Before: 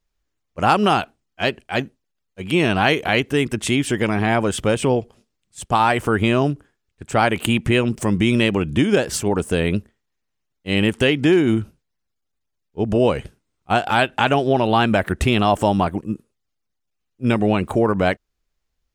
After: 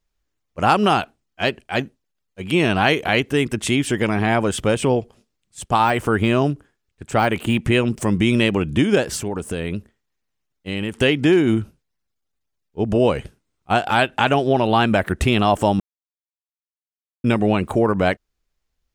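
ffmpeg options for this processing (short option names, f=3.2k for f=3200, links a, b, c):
-filter_complex "[0:a]asettb=1/sr,asplit=3[a][b][c];[a]atrim=end=5.844[d];[b]atrim=start=5.84:end=7.61,asetpts=PTS-STARTPTS,afade=t=in:d=0.004:c=qsin,afade=t=out:st=1.766:d=0.004:c=qsin,deesser=0.6[e];[c]atrim=start=7.606[f];[d][e]acrossfade=d=0.004:c1=hsin:c2=qsin[g];[g][f]acrossfade=d=0.004:c1=qsin:c2=hsin,asettb=1/sr,asplit=3[h][i][j];[h]atrim=end=9.034[k];[i]atrim=start=9.03:end=10.98,asetpts=PTS-STARTPTS,afade=t=in:d=0.004:c=qsin,afade=t=out:st=1.946:d=0.004:c=qsin,acompressor=threshold=-23dB:ratio=2.5:attack=3.2:release=140:knee=1:detection=peak[l];[j]atrim=start=10.976[m];[k][l]acrossfade=d=0.004:c1=hsin:c2=qsin[n];[n][m]acrossfade=d=0.004:c1=qsin:c2=hsin,asplit=3[o][p][q];[o]atrim=end=15.8,asetpts=PTS-STARTPTS,afade=t=out:st=15.796:d=0.004:c=hsin[r];[p]atrim=start=15.8:end=17.24,asetpts=PTS-STARTPTS,volume=0[s];[q]atrim=start=17.24,asetpts=PTS-STARTPTS,afade=t=in:d=0.004:c=hsin[t];[r][s][t]concat=n=3:v=0:a=1"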